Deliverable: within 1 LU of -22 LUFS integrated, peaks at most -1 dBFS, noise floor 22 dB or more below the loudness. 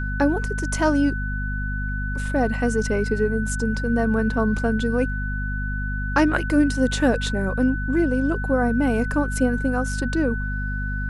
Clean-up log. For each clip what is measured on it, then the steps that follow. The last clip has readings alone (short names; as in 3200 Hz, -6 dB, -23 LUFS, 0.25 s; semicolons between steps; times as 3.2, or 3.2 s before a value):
hum 50 Hz; harmonics up to 250 Hz; hum level -24 dBFS; steady tone 1500 Hz; tone level -30 dBFS; loudness -23.0 LUFS; peak -6.0 dBFS; loudness target -22.0 LUFS
-> de-hum 50 Hz, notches 5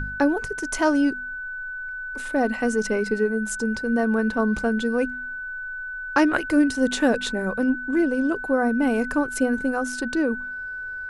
hum none; steady tone 1500 Hz; tone level -30 dBFS
-> notch 1500 Hz, Q 30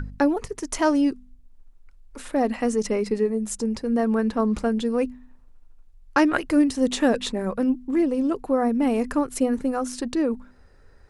steady tone none; loudness -23.5 LUFS; peak -5.5 dBFS; loudness target -22.0 LUFS
-> gain +1.5 dB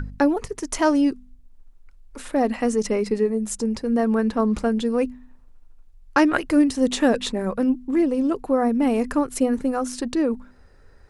loudness -22.0 LUFS; peak -4.0 dBFS; noise floor -50 dBFS